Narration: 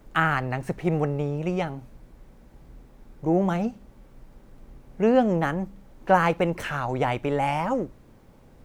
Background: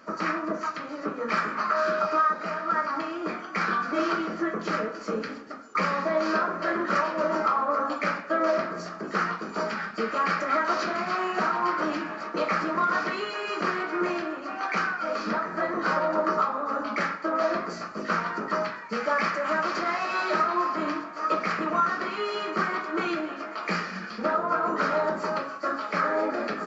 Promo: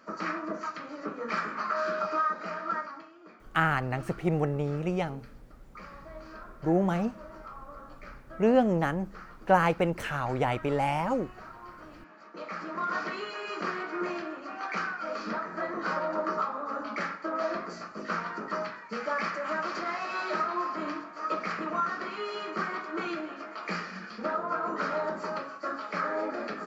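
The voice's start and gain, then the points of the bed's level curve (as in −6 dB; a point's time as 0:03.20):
3.40 s, −3.0 dB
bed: 0:02.72 −5 dB
0:03.12 −21 dB
0:11.96 −21 dB
0:12.95 −5.5 dB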